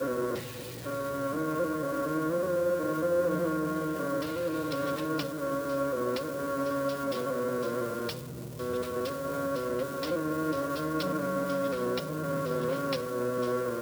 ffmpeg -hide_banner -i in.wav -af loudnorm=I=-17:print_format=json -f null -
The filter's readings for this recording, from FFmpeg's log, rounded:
"input_i" : "-31.3",
"input_tp" : "-18.1",
"input_lra" : "2.7",
"input_thresh" : "-41.3",